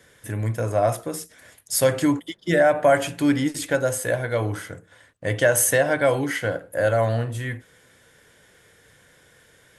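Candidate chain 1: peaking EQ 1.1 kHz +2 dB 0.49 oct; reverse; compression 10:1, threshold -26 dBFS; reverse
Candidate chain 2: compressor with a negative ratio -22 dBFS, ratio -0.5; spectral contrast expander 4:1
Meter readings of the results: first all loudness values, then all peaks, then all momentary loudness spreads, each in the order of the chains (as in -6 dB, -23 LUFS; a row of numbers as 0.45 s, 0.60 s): -31.0 LUFS, -27.0 LUFS; -17.0 dBFS, -8.0 dBFS; 8 LU, 23 LU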